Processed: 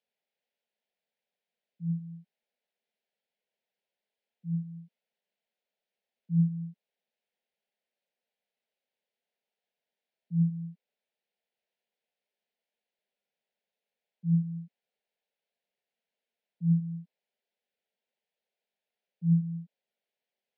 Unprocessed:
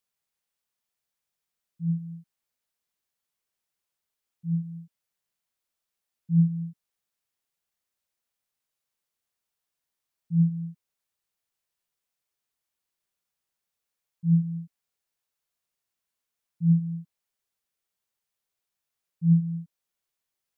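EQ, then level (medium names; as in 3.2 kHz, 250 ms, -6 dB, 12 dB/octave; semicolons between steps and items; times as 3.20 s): high-pass 230 Hz 24 dB/octave; distance through air 350 m; static phaser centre 310 Hz, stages 6; +7.5 dB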